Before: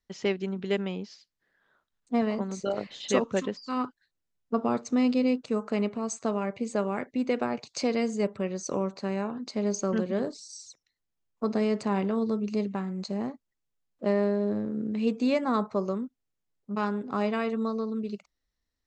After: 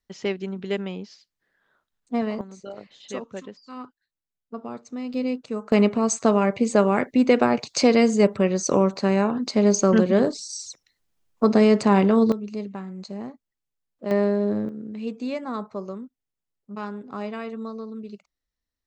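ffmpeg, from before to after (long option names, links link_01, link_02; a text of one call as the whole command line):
ffmpeg -i in.wav -af "asetnsamples=nb_out_samples=441:pad=0,asendcmd='2.41 volume volume -8dB;5.14 volume volume -1dB;5.72 volume volume 10dB;12.32 volume volume -2.5dB;14.11 volume volume 4.5dB;14.69 volume volume -4dB',volume=1dB" out.wav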